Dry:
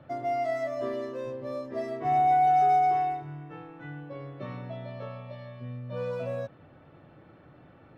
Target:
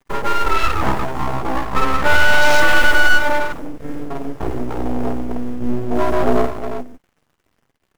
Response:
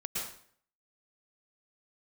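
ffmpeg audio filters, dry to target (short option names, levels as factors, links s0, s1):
-filter_complex "[0:a]acrossover=split=2200[s0][s1];[s0]acrusher=bits=3:mode=log:mix=0:aa=0.000001[s2];[s2][s1]amix=inputs=2:normalize=0,asettb=1/sr,asplit=3[s3][s4][s5];[s3]atrim=end=1.634[s6];[s4]atrim=start=1.63:end=3.4,asetpts=PTS-STARTPTS,afade=t=in:d=0.004:c=qsin,afade=t=out:st=1.766:d=0.004:c=qsin,aecho=1:1:1.6:0.93,atrim=end_sample=78057[s7];[s5]atrim=start=3.396[s8];[s6][s7]acrossfade=d=0.004:c1=hsin:c2=qsin[s9];[s9][s8]acrossfade=d=0.004:c1=qsin:c2=hsin,aeval=exprs='sgn(val(0))*max(abs(val(0))-0.00376,0)':c=same,flanger=delay=4.8:depth=8.9:regen=-37:speed=0.76:shape=triangular,equalizer=f=125:t=o:w=0.33:g=4,equalizer=f=800:t=o:w=0.33:g=-11,equalizer=f=4000:t=o:w=0.33:g=-8,aecho=1:1:49|50|118|178|359|504:0.282|0.447|0.188|0.119|0.398|0.15,afwtdn=0.01,aeval=exprs='abs(val(0))':c=same,alimiter=level_in=15:limit=0.891:release=50:level=0:latency=1,volume=0.891"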